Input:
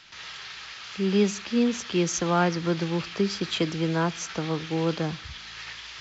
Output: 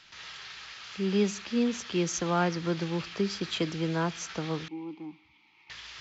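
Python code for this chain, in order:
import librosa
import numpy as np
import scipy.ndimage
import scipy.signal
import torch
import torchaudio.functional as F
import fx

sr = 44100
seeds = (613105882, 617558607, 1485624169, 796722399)

y = fx.vowel_filter(x, sr, vowel='u', at=(4.68, 5.7))
y = y * librosa.db_to_amplitude(-4.0)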